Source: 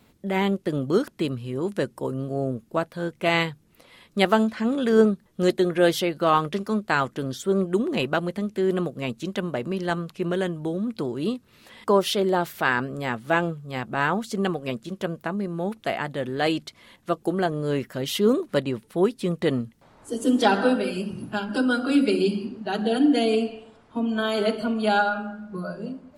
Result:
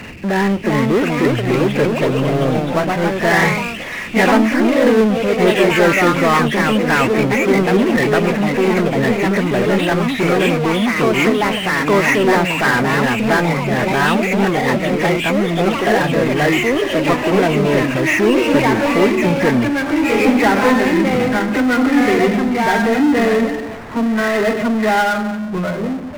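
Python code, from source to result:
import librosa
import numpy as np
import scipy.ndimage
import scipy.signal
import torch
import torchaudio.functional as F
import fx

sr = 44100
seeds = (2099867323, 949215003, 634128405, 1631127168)

y = fx.freq_compress(x, sr, knee_hz=1600.0, ratio=4.0)
y = fx.power_curve(y, sr, exponent=0.5)
y = fx.echo_pitch(y, sr, ms=428, semitones=2, count=3, db_per_echo=-3.0)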